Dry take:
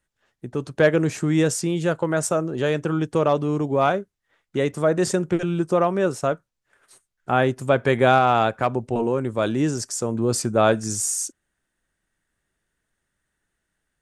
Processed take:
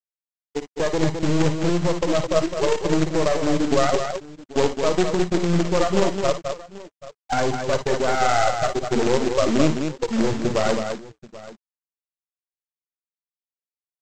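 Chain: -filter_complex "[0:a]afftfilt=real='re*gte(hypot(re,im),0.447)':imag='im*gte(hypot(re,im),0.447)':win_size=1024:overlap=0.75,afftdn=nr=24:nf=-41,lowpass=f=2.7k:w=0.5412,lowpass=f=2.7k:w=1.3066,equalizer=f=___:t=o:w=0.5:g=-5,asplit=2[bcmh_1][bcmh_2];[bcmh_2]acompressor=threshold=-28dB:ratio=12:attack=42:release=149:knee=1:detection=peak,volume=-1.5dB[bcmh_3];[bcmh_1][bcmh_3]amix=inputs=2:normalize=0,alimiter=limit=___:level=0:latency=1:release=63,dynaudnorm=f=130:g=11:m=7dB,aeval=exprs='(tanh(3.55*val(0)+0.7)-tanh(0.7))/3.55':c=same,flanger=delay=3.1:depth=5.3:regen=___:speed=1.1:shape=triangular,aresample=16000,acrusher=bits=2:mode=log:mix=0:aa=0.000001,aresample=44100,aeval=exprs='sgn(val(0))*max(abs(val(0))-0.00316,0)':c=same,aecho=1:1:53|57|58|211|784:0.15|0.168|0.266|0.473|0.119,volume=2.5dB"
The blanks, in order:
910, -13.5dB, -79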